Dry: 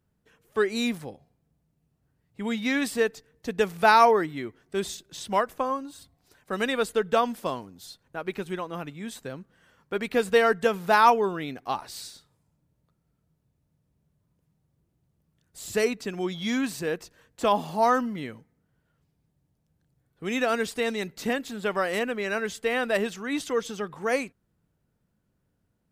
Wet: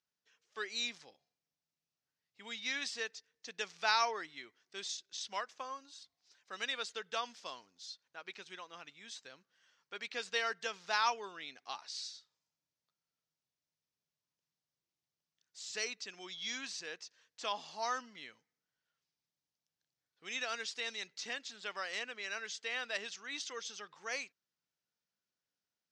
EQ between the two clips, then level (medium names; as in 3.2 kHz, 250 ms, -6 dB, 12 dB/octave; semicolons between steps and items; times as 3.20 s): band-pass filter 5.9 kHz, Q 2.3; distance through air 160 m; +9.0 dB